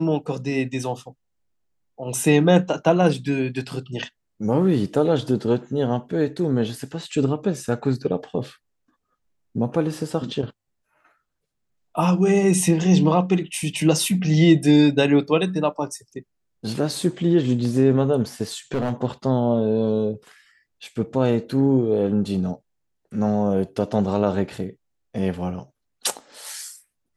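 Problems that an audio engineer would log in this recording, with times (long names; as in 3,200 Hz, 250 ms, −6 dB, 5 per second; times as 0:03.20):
0:18.74–0:18.93: clipping −18.5 dBFS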